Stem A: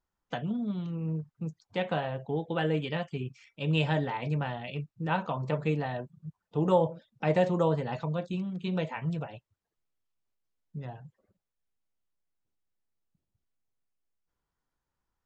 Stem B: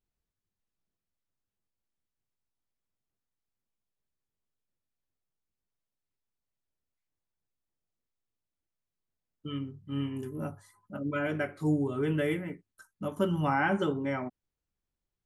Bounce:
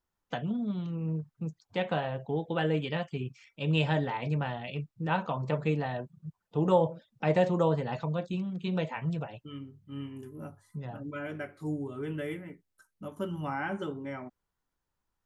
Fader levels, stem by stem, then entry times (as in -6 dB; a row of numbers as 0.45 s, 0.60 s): 0.0 dB, -6.5 dB; 0.00 s, 0.00 s